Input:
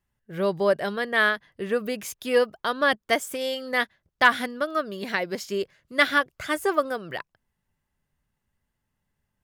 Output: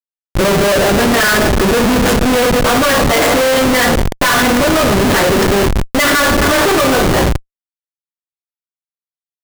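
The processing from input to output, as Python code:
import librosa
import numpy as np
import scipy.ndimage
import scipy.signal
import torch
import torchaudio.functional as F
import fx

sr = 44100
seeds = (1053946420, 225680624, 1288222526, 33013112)

y = fx.spec_quant(x, sr, step_db=15)
y = fx.rev_double_slope(y, sr, seeds[0], early_s=0.35, late_s=4.1, knee_db=-21, drr_db=-10.0)
y = fx.schmitt(y, sr, flips_db=-21.5)
y = y * librosa.db_to_amplitude(5.5)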